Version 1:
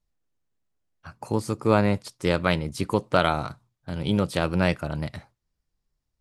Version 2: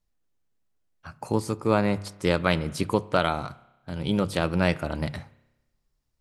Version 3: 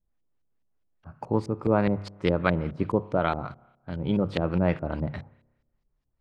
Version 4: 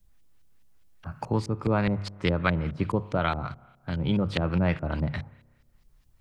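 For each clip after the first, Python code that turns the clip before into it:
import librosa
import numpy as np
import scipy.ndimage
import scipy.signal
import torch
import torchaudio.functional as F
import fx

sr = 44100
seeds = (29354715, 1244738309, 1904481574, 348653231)

y1 = fx.hum_notches(x, sr, base_hz=50, count=3)
y1 = fx.rev_spring(y1, sr, rt60_s=1.0, pass_ms=(30,), chirp_ms=40, drr_db=18.5)
y1 = fx.rider(y1, sr, range_db=3, speed_s=0.5)
y2 = fx.filter_lfo_lowpass(y1, sr, shape='saw_up', hz=4.8, low_hz=410.0, high_hz=4800.0, q=0.76)
y3 = fx.peak_eq(y2, sr, hz=440.0, db=-9.5, octaves=3.0)
y3 = fx.band_squash(y3, sr, depth_pct=40)
y3 = y3 * librosa.db_to_amplitude(5.5)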